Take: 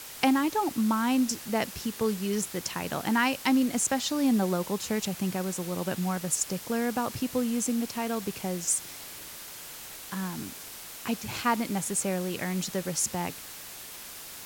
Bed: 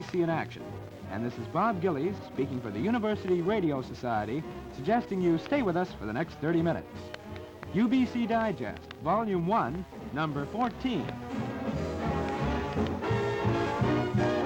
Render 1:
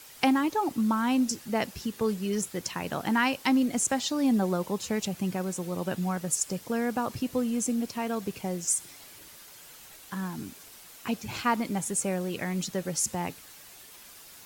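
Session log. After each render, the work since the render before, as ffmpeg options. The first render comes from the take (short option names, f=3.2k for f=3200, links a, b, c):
-af "afftdn=nr=8:nf=-43"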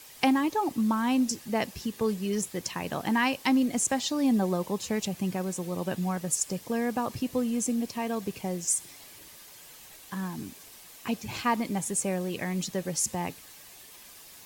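-af "bandreject=f=1.4k:w=8.6"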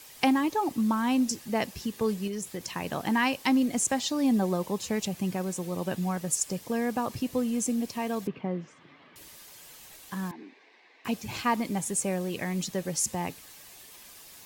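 -filter_complex "[0:a]asettb=1/sr,asplit=3[a][b][c];[a]atrim=end=2.274[d];[b]atrim=start=2.27:end=2.68,asetpts=PTS-STARTPTS,afade=t=in:d=0.004:c=qsin,afade=t=out:st=0.406:d=0.004:c=qsin,acompressor=threshold=-30dB:ratio=6:attack=3.2:release=140:knee=1:detection=peak[e];[c]atrim=start=2.676[f];[d][e]acrossfade=d=0.004:c1=hsin:c2=qsin[g];[g][f]acrossfade=d=0.004:c1=qsin:c2=hsin,asettb=1/sr,asplit=3[h][i][j];[h]atrim=end=8.274[k];[i]atrim=start=8.27:end=9.16,asetpts=PTS-STARTPTS,afade=t=in:d=0.004:c=qsin,afade=t=out:st=0.886:d=0.004:c=qsin,highpass=150,equalizer=f=150:t=q:w=4:g=7,equalizer=f=260:t=q:w=4:g=6,equalizer=f=780:t=q:w=4:g=-3,equalizer=f=1.2k:t=q:w=4:g=5,equalizer=f=2.5k:t=q:w=4:g=-4,lowpass=f=2.8k:w=0.5412,lowpass=f=2.8k:w=1.3066[l];[j]atrim=start=9.156[m];[k][l]acrossfade=d=0.004:c1=hsin:c2=qsin[n];[n][m]acrossfade=d=0.004:c1=qsin:c2=hsin,asettb=1/sr,asplit=3[o][p][q];[o]atrim=end=10.314[r];[p]atrim=start=10.31:end=11.05,asetpts=PTS-STARTPTS,afade=t=in:d=0.004:c=qsin,afade=t=out:st=0.736:d=0.004:c=qsin,highpass=f=310:w=0.5412,highpass=f=310:w=1.3066,equalizer=f=590:t=q:w=4:g=-6,equalizer=f=1.3k:t=q:w=4:g=-10,equalizer=f=2k:t=q:w=4:g=5,equalizer=f=3.1k:t=q:w=4:g=-9,lowpass=f=3.3k:w=0.5412,lowpass=f=3.3k:w=1.3066[s];[q]atrim=start=11.046[t];[r][s]acrossfade=d=0.004:c1=hsin:c2=qsin[u];[u][t]acrossfade=d=0.004:c1=qsin:c2=hsin"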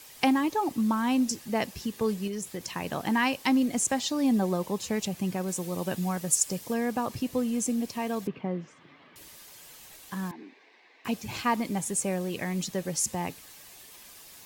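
-filter_complex "[0:a]asettb=1/sr,asplit=3[a][b][c];[a]atrim=end=5.484[d];[b]atrim=start=5.48:end=6.74,asetpts=PTS-STARTPTS,afade=t=in:d=0.004:c=qsin,afade=t=out:st=1.256:d=0.004:c=qsin,highshelf=f=4.7k:g=5[e];[c]atrim=start=6.736[f];[d][e]acrossfade=d=0.004:c1=hsin:c2=qsin[g];[g][f]acrossfade=d=0.004:c1=qsin:c2=hsin"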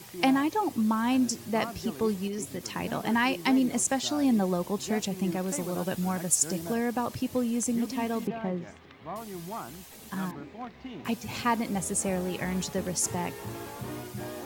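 -filter_complex "[1:a]volume=-11dB[a];[0:a][a]amix=inputs=2:normalize=0"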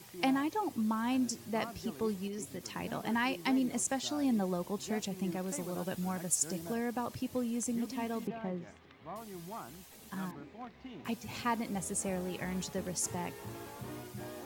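-af "volume=-6.5dB"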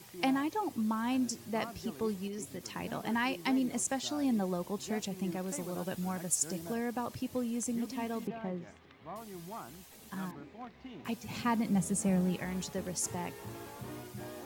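-filter_complex "[0:a]asettb=1/sr,asplit=3[a][b][c];[a]atrim=end=11.304[d];[b]atrim=start=11.3:end=12.36,asetpts=PTS-STARTPTS,afade=t=in:d=0.004:c=qsin,afade=t=out:st=1.056:d=0.004:c=qsin,equalizer=f=180:t=o:w=0.77:g=10.5[e];[c]atrim=start=12.356[f];[d][e]acrossfade=d=0.004:c1=hsin:c2=qsin[g];[g][f]acrossfade=d=0.004:c1=qsin:c2=hsin"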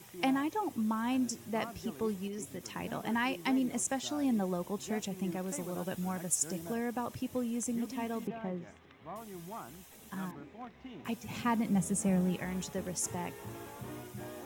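-af "equalizer=f=4.5k:w=5.6:g=-8.5"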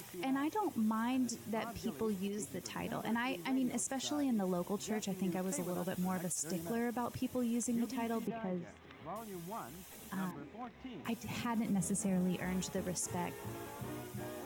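-af "alimiter=level_in=4dB:limit=-24dB:level=0:latency=1:release=50,volume=-4dB,acompressor=mode=upward:threshold=-46dB:ratio=2.5"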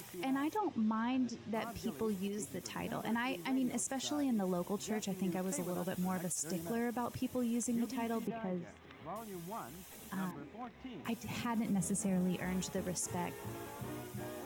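-filter_complex "[0:a]asettb=1/sr,asplit=3[a][b][c];[a]atrim=end=0.574[d];[b]atrim=start=0.57:end=1.54,asetpts=PTS-STARTPTS,afade=t=in:d=0.004:c=qsin,afade=t=out:st=0.966:d=0.004:c=qsin,lowpass=f=5k:w=0.5412,lowpass=f=5k:w=1.3066[e];[c]atrim=start=1.536[f];[d][e]acrossfade=d=0.004:c1=hsin:c2=qsin[g];[g][f]acrossfade=d=0.004:c1=qsin:c2=hsin"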